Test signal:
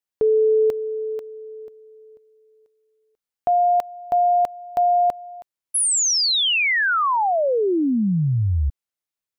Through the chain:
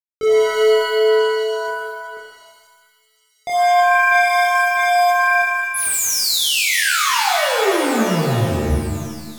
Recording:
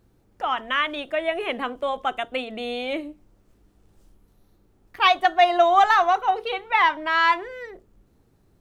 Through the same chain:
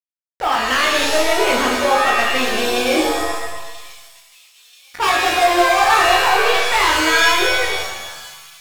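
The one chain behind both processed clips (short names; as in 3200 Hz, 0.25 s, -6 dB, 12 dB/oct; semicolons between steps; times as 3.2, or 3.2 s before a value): sample leveller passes 5; compressor, threshold -10 dBFS; chorus 0.4 Hz, delay 20 ms, depth 5.5 ms; crossover distortion -36 dBFS; thin delay 0.985 s, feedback 48%, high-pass 4800 Hz, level -9.5 dB; shimmer reverb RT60 1.1 s, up +7 st, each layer -2 dB, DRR 0.5 dB; gain -3.5 dB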